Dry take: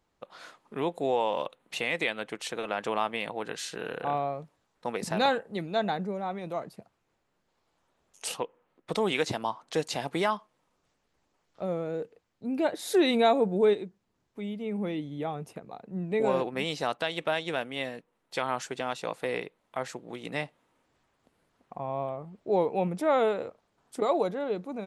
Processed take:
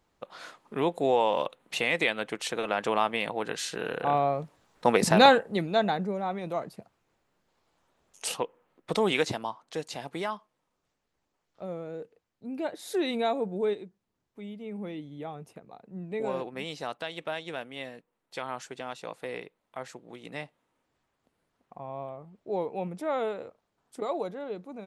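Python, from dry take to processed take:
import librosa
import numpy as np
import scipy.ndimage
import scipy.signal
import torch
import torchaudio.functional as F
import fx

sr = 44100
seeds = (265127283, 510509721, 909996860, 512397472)

y = fx.gain(x, sr, db=fx.line((4.01, 3.0), (4.91, 11.0), (5.92, 2.0), (9.19, 2.0), (9.6, -5.5)))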